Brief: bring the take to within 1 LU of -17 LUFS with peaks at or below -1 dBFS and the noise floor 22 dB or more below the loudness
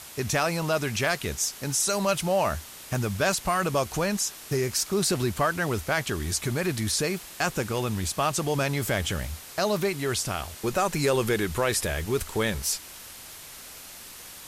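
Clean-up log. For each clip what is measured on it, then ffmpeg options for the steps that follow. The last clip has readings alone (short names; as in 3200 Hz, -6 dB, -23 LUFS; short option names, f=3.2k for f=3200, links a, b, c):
noise floor -44 dBFS; noise floor target -49 dBFS; loudness -26.5 LUFS; peak -11.5 dBFS; loudness target -17.0 LUFS
-> -af "afftdn=nr=6:nf=-44"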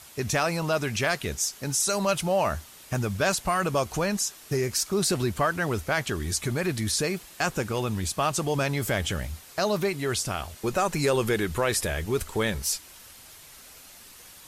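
noise floor -49 dBFS; loudness -27.0 LUFS; peak -12.0 dBFS; loudness target -17.0 LUFS
-> -af "volume=10dB"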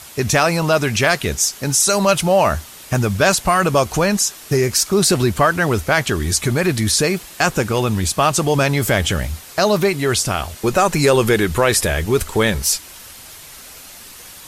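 loudness -17.0 LUFS; peak -2.0 dBFS; noise floor -39 dBFS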